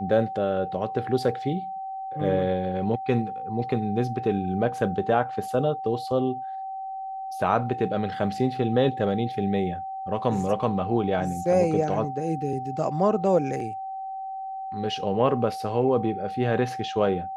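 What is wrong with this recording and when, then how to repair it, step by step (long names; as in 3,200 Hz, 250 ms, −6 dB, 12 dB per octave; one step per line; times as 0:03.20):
whistle 770 Hz −31 dBFS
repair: notch filter 770 Hz, Q 30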